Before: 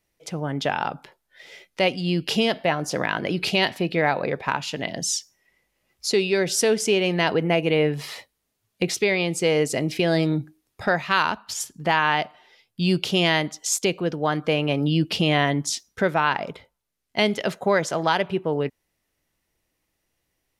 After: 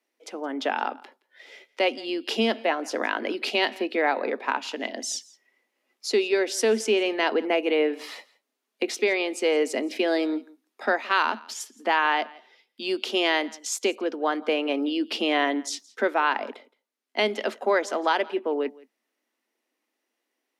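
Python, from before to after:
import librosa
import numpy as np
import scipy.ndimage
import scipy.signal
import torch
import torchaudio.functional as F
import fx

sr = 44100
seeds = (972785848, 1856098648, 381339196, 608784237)

y = scipy.signal.sosfilt(scipy.signal.cheby1(8, 1.0, 220.0, 'highpass', fs=sr, output='sos'), x)
y = fx.high_shelf(y, sr, hz=6000.0, db=-7.5)
y = y + 10.0 ** (-23.0 / 20.0) * np.pad(y, (int(169 * sr / 1000.0), 0))[:len(y)]
y = y * 10.0 ** (-1.0 / 20.0)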